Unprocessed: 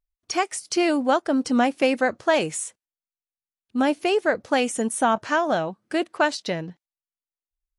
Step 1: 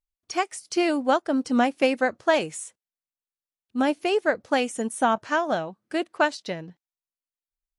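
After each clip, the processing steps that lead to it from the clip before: upward expander 1.5:1, over -28 dBFS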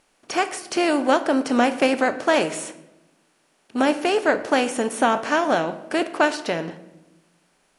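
per-bin compression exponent 0.6; shoebox room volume 390 m³, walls mixed, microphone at 0.37 m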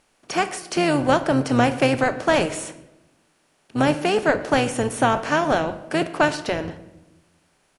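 octaver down 1 oct, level -4 dB; speakerphone echo 0.14 s, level -24 dB

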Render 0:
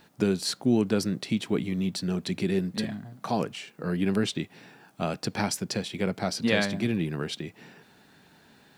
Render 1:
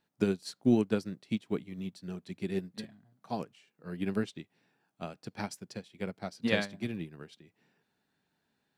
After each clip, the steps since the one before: upward expander 2.5:1, over -34 dBFS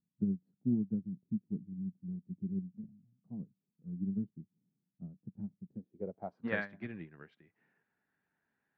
low-pass sweep 190 Hz -> 1800 Hz, 5.66–6.59; gain -7.5 dB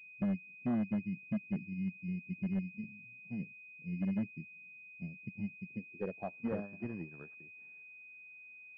treble ducked by the level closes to 550 Hz, closed at -30 dBFS; overloaded stage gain 32 dB; pulse-width modulation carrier 2500 Hz; gain +2.5 dB

